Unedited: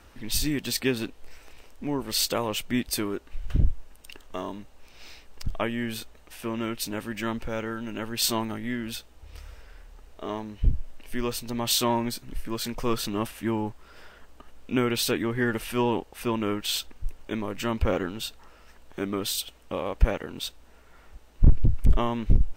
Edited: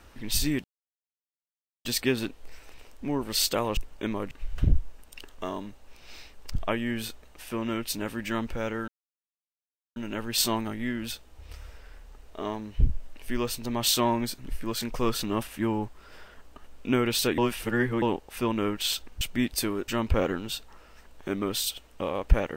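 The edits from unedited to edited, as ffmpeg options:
ffmpeg -i in.wav -filter_complex "[0:a]asplit=9[link_01][link_02][link_03][link_04][link_05][link_06][link_07][link_08][link_09];[link_01]atrim=end=0.64,asetpts=PTS-STARTPTS,afade=type=out:start_time=0.636:duration=0.004:curve=hsin,apad=pad_dur=1.21[link_10];[link_02]atrim=start=0.64:end=2.562,asetpts=PTS-STARTPTS,afade=type=in:duration=0.004:curve=hsin[link_11];[link_03]atrim=start=17.048:end=17.592[link_12];[link_04]atrim=start=3.228:end=7.8,asetpts=PTS-STARTPTS,afade=type=out:start_time=4.568:duration=0.004:curve=hsin,apad=pad_dur=1.08[link_13];[link_05]atrim=start=7.8:end=15.222,asetpts=PTS-STARTPTS,afade=type=in:duration=0.004:curve=hsin[link_14];[link_06]atrim=start=15.218:end=15.862,asetpts=PTS-STARTPTS,areverse[link_15];[link_07]atrim=start=15.858:end=17.052[link_16];[link_08]atrim=start=2.558:end=3.232[link_17];[link_09]atrim=start=17.588[link_18];[link_10][link_11]concat=n=2:v=0:a=1[link_19];[link_19][link_12]acrossfade=duration=0.004:curve1=hsin:curve2=hsin[link_20];[link_13][link_14]concat=n=2:v=0:a=1[link_21];[link_20][link_21]acrossfade=duration=0.004:curve1=hsin:curve2=hsin[link_22];[link_22][link_15]acrossfade=duration=0.004:curve1=hsin:curve2=hsin[link_23];[link_23][link_16]acrossfade=duration=0.004:curve1=hsin:curve2=hsin[link_24];[link_24][link_17]acrossfade=duration=0.004:curve1=hsin:curve2=hsin[link_25];[link_25][link_18]acrossfade=duration=0.004:curve1=hsin:curve2=hsin" out.wav

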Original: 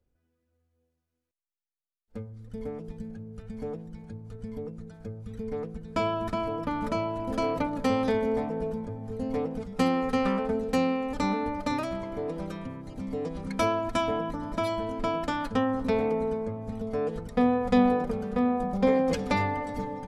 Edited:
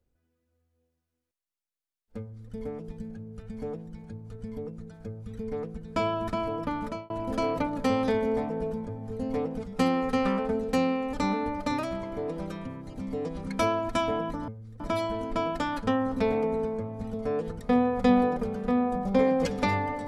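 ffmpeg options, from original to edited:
ffmpeg -i in.wav -filter_complex "[0:a]asplit=4[link_01][link_02][link_03][link_04];[link_01]atrim=end=7.1,asetpts=PTS-STARTPTS,afade=type=out:start_time=6.6:duration=0.5:curve=qsin[link_05];[link_02]atrim=start=7.1:end=14.482,asetpts=PTS-STARTPTS,afade=type=in:duration=0.004:curve=hsin[link_06];[link_03]atrim=start=2.198:end=2.522[link_07];[link_04]atrim=start=14.478[link_08];[link_05][link_06]concat=n=2:v=0:a=1[link_09];[link_09][link_07]acrossfade=duration=0.004:curve1=hsin:curve2=hsin[link_10];[link_10][link_08]acrossfade=duration=0.004:curve1=hsin:curve2=hsin" out.wav

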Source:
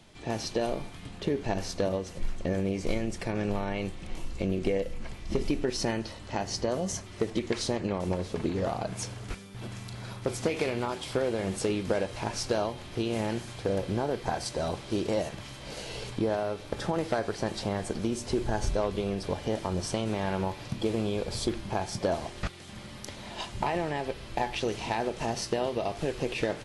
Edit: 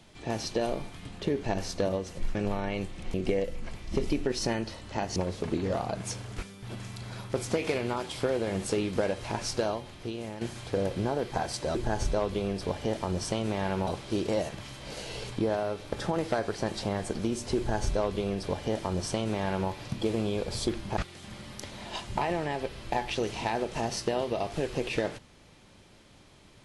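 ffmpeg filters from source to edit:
ffmpeg -i in.wav -filter_complex "[0:a]asplit=8[link_01][link_02][link_03][link_04][link_05][link_06][link_07][link_08];[link_01]atrim=end=2.352[link_09];[link_02]atrim=start=3.388:end=4.182[link_10];[link_03]atrim=start=4.518:end=6.542[link_11];[link_04]atrim=start=8.078:end=13.33,asetpts=PTS-STARTPTS,afade=type=out:start_time=4.352:duration=0.9:silence=0.281838[link_12];[link_05]atrim=start=13.33:end=14.672,asetpts=PTS-STARTPTS,afade=type=in:duration=0.004:curve=hsin:silence=0.281838[link_13];[link_06]atrim=start=18.368:end=20.492[link_14];[link_07]atrim=start=14.668:end=21.772[link_15];[link_08]atrim=start=22.418[link_16];[link_09][link_10]acrossfade=duration=0.004:curve1=hsin:curve2=hsin[link_17];[link_17][link_11]acrossfade=duration=0.004:curve1=hsin:curve2=hsin[link_18];[link_12][link_13]concat=n=2:v=0:a=1[link_19];[link_18][link_19]acrossfade=duration=0.004:curve1=hsin:curve2=hsin[link_20];[link_20][link_14]acrossfade=duration=0.004:curve1=hsin:curve2=hsin[link_21];[link_21][link_15]acrossfade=duration=0.004:curve1=hsin:curve2=hsin[link_22];[link_22][link_16]acrossfade=duration=0.004:curve1=hsin:curve2=hsin" out.wav

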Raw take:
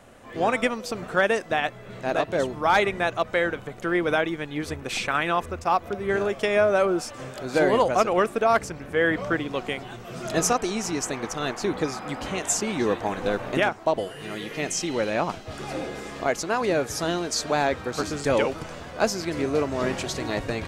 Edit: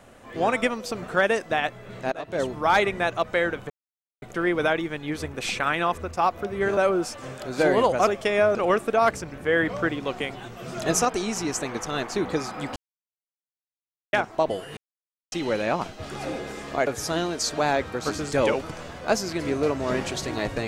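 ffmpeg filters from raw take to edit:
ffmpeg -i in.wav -filter_complex "[0:a]asplit=11[link_01][link_02][link_03][link_04][link_05][link_06][link_07][link_08][link_09][link_10][link_11];[link_01]atrim=end=2.12,asetpts=PTS-STARTPTS,afade=type=out:start_time=2.116:duration=0.004:curve=hsin:silence=0.0944061[link_12];[link_02]atrim=start=2.12:end=3.7,asetpts=PTS-STARTPTS,afade=type=in:duration=0.35:silence=0.0944061,afade=type=out:start_time=1.576:duration=0.004:curve=hsin,apad=pad_dur=0.52[link_13];[link_03]atrim=start=3.7:end=6.252,asetpts=PTS-STARTPTS,afade=type=in:duration=0.004:curve=hsin[link_14];[link_04]atrim=start=6.728:end=8.032[link_15];[link_05]atrim=start=6.248:end=6.732[link_16];[link_06]atrim=start=8.028:end=12.24,asetpts=PTS-STARTPTS,afade=type=out:start_time=4.208:duration=0.004:curve=hsin[link_17];[link_07]atrim=start=12.24:end=13.61,asetpts=PTS-STARTPTS,volume=0[link_18];[link_08]atrim=start=13.61:end=14.25,asetpts=PTS-STARTPTS,afade=type=in:duration=0.004:curve=hsin,afade=type=out:start_time=0.636:duration=0.004:curve=hsin[link_19];[link_09]atrim=start=14.25:end=14.8,asetpts=PTS-STARTPTS,volume=0[link_20];[link_10]atrim=start=14.8:end=16.352,asetpts=PTS-STARTPTS,afade=type=in:duration=0.004:curve=hsin[link_21];[link_11]atrim=start=16.788[link_22];[link_12][link_13][link_14]concat=n=3:v=0:a=1[link_23];[link_23][link_15]acrossfade=duration=0.004:curve1=hsin:curve2=hsin[link_24];[link_24][link_16]acrossfade=duration=0.004:curve1=hsin:curve2=hsin[link_25];[link_17][link_18][link_19][link_20][link_21]concat=n=5:v=0:a=1[link_26];[link_25][link_26]acrossfade=duration=0.004:curve1=hsin:curve2=hsin[link_27];[link_27][link_22]acrossfade=duration=0.004:curve1=hsin:curve2=hsin" out.wav

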